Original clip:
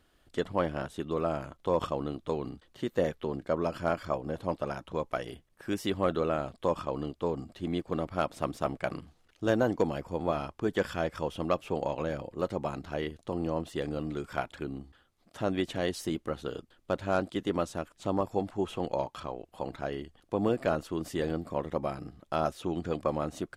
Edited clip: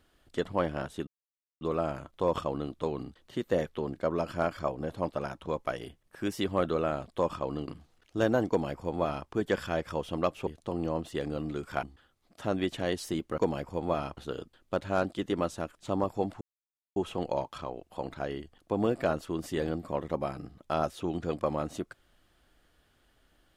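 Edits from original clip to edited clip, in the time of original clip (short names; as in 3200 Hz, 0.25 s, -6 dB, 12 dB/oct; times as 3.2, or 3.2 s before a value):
1.07 insert silence 0.54 s
7.14–8.95 cut
9.76–10.55 copy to 16.34
11.74–13.08 cut
14.44–14.79 cut
18.58 insert silence 0.55 s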